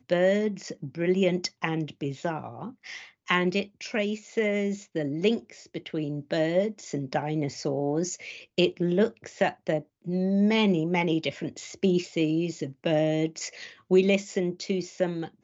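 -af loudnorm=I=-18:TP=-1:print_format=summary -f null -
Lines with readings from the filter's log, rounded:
Input Integrated:    -27.5 LUFS
Input True Peak:      -9.3 dBTP
Input LRA:             2.5 LU
Input Threshold:     -37.8 LUFS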